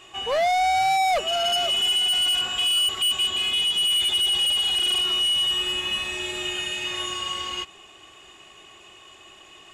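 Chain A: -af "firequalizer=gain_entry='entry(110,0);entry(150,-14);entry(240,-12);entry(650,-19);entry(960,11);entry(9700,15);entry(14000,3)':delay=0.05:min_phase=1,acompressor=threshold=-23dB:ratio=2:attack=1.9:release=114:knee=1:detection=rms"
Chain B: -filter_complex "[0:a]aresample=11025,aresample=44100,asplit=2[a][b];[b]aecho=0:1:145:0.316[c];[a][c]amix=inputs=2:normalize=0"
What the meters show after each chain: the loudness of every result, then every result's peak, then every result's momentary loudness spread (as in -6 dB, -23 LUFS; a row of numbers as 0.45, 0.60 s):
-17.5, -21.0 LUFS; -11.5, -14.5 dBFS; 19, 8 LU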